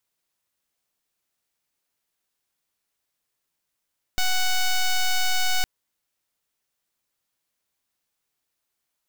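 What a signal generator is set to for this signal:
pulse wave 742 Hz, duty 7% −20.5 dBFS 1.46 s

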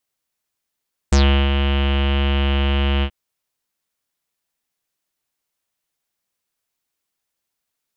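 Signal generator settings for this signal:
subtractive voice square C#2 24 dB per octave, low-pass 3,000 Hz, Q 5.9, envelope 1.5 octaves, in 0.12 s, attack 6.1 ms, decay 0.36 s, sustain −6 dB, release 0.07 s, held 1.91 s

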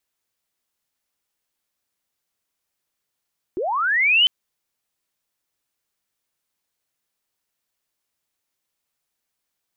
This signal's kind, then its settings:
glide linear 320 Hz → 3,100 Hz −22 dBFS → −11.5 dBFS 0.70 s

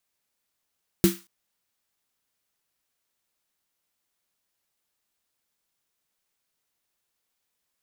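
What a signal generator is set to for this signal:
synth snare length 0.23 s, tones 190 Hz, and 340 Hz, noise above 1,100 Hz, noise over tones −10 dB, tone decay 0.21 s, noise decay 0.33 s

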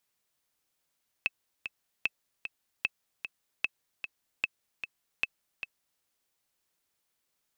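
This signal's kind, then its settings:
click track 151 BPM, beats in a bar 2, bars 6, 2,610 Hz, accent 9 dB −13.5 dBFS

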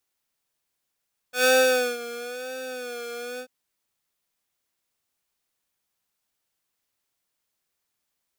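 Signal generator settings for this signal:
subtractive patch with vibrato B4, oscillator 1 square, oscillator 2 square, interval −12 semitones, detune 10 cents, oscillator 2 level −5 dB, noise −15 dB, filter highpass, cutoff 260 Hz, Q 0.75, filter envelope 2 octaves, attack 113 ms, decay 0.53 s, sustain −19 dB, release 0.08 s, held 2.06 s, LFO 1 Hz, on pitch 75 cents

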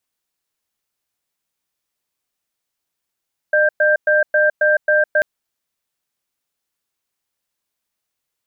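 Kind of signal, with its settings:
tone pair in a cadence 606 Hz, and 1,580 Hz, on 0.16 s, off 0.11 s, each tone −14 dBFS 1.69 s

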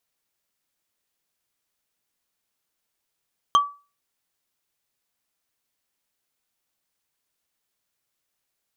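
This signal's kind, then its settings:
struck wood, lowest mode 1,150 Hz, decay 0.32 s, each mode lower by 8 dB, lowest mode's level −10 dB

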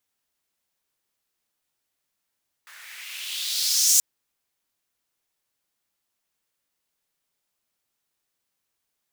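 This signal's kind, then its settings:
filter sweep on noise pink, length 1.33 s highpass, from 1,500 Hz, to 6,900 Hz, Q 3, exponential, gain ramp +33.5 dB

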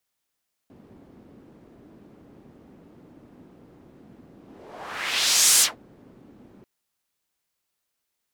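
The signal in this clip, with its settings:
pass-by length 5.94 s, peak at 0:04.91, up 1.31 s, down 0.17 s, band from 260 Hz, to 7,900 Hz, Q 1.5, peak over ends 35 dB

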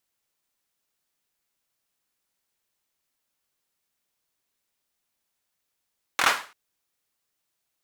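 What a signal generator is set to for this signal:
synth clap length 0.34 s, apart 24 ms, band 1,300 Hz, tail 0.38 s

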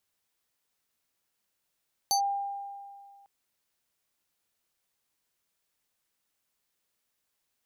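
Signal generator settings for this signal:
two-operator FM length 1.15 s, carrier 799 Hz, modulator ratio 6.73, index 1.5, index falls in 0.10 s linear, decay 2.08 s, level −21.5 dB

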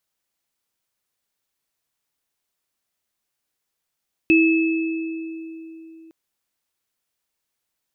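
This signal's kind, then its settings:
inharmonic partials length 1.81 s, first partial 325 Hz, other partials 2,600 Hz, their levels −3.5 dB, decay 3.50 s, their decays 2.02 s, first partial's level −12 dB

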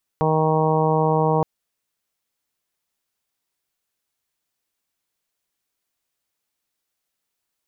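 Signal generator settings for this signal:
steady harmonic partials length 1.22 s, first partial 157 Hz, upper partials −7/0/−5/−3/−3.5/−8.5 dB, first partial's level −21 dB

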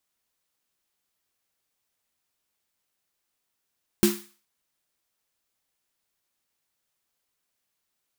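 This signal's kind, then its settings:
synth snare length 0.42 s, tones 210 Hz, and 350 Hz, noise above 930 Hz, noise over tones −7 dB, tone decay 0.30 s, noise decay 0.42 s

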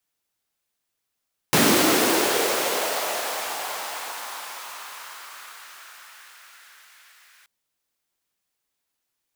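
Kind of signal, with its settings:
filter sweep on noise pink, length 5.93 s highpass, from 210 Hz, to 1,700 Hz, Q 2, linear, gain ramp −37 dB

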